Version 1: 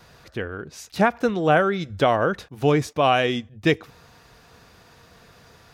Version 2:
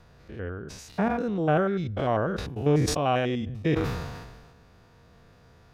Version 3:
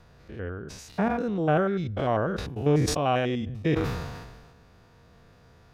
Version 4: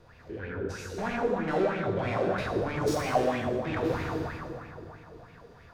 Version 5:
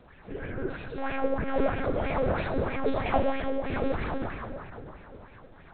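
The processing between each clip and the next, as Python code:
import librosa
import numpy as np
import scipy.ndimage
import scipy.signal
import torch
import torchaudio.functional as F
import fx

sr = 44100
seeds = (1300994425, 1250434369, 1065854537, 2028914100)

y1 = fx.spec_steps(x, sr, hold_ms=100)
y1 = fx.tilt_eq(y1, sr, slope=-2.0)
y1 = fx.sustainer(y1, sr, db_per_s=40.0)
y1 = y1 * 10.0 ** (-6.0 / 20.0)
y2 = y1
y3 = 10.0 ** (-29.5 / 20.0) * np.tanh(y2 / 10.0 ** (-29.5 / 20.0))
y3 = fx.rev_plate(y3, sr, seeds[0], rt60_s=3.0, hf_ratio=0.5, predelay_ms=0, drr_db=-3.5)
y3 = fx.bell_lfo(y3, sr, hz=3.1, low_hz=360.0, high_hz=2500.0, db=13)
y3 = y3 * 10.0 ** (-5.0 / 20.0)
y4 = fx.lpc_monotone(y3, sr, seeds[1], pitch_hz=270.0, order=8)
y4 = y4 * 10.0 ** (1.5 / 20.0)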